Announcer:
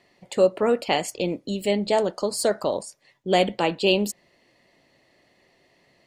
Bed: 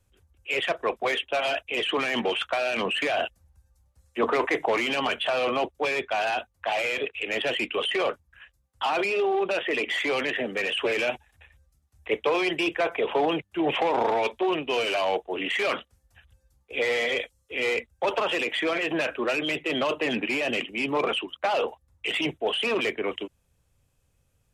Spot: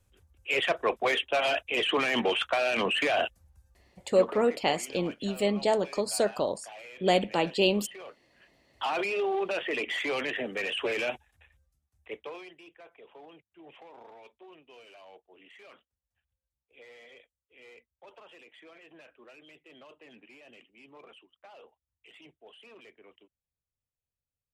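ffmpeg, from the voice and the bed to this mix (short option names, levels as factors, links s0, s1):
-filter_complex "[0:a]adelay=3750,volume=0.631[s0];[1:a]volume=5.31,afade=t=out:st=3.75:d=0.63:silence=0.112202,afade=t=in:st=8.32:d=0.41:silence=0.177828,afade=t=out:st=11.07:d=1.48:silence=0.0749894[s1];[s0][s1]amix=inputs=2:normalize=0"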